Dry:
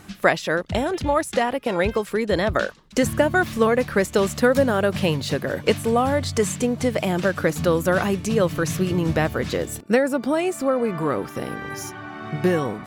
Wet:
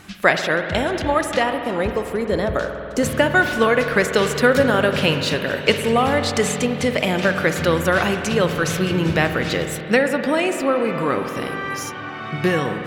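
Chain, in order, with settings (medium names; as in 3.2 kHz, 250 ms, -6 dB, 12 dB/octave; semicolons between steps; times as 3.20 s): peaking EQ 2.7 kHz +5.5 dB 2.1 oct, from 1.54 s -5 dB, from 3.03 s +8 dB; spring tank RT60 3.3 s, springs 48 ms, chirp 55 ms, DRR 6.5 dB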